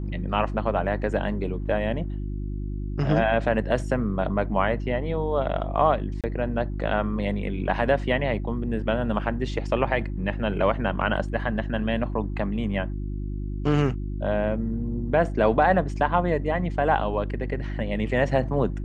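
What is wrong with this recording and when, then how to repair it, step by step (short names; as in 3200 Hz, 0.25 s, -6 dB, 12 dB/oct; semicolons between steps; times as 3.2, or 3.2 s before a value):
hum 50 Hz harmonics 7 -30 dBFS
6.21–6.24 gap 27 ms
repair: de-hum 50 Hz, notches 7; interpolate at 6.21, 27 ms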